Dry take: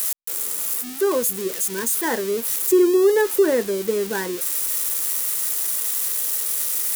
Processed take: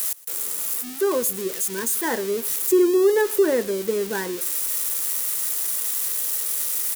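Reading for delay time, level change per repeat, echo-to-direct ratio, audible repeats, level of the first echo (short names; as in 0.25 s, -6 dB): 0.117 s, -12.0 dB, -21.5 dB, 2, -22.0 dB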